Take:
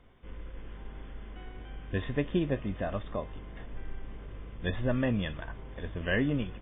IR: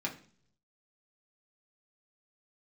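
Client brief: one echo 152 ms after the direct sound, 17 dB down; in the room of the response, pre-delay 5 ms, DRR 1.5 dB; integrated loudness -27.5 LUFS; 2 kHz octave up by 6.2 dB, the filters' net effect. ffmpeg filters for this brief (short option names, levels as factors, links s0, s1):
-filter_complex "[0:a]equalizer=f=2000:t=o:g=7.5,aecho=1:1:152:0.141,asplit=2[s0][s1];[1:a]atrim=start_sample=2205,adelay=5[s2];[s1][s2]afir=irnorm=-1:irlink=0,volume=0.562[s3];[s0][s3]amix=inputs=2:normalize=0,volume=1.12"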